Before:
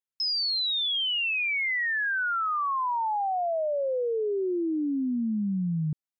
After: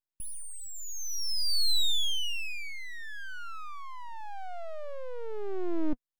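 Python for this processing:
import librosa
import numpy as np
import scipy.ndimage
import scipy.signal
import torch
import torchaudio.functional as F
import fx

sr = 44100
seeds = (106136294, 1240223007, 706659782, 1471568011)

y = fx.graphic_eq_10(x, sr, hz=(125, 250, 500, 1000, 2000, 4000), db=(10, -6, -8, -9, 11, -12))
y = np.abs(y)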